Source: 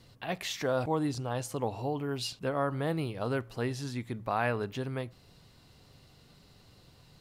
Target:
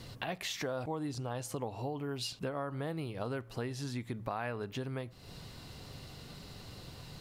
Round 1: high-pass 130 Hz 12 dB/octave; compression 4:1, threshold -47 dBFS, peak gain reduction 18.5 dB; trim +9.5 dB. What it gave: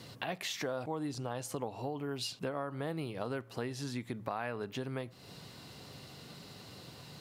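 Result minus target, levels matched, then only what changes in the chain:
125 Hz band -2.5 dB
remove: high-pass 130 Hz 12 dB/octave

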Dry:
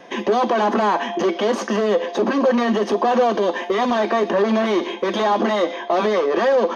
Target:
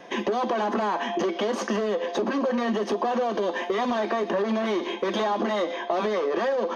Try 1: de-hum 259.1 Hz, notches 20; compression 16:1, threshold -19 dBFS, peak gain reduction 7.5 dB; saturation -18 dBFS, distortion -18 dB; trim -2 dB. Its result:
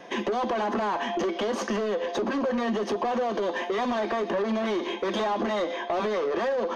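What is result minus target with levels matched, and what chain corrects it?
saturation: distortion +16 dB
de-hum 259.1 Hz, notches 20; compression 16:1, threshold -19 dBFS, peak gain reduction 7.5 dB; saturation -8 dBFS, distortion -34 dB; trim -2 dB

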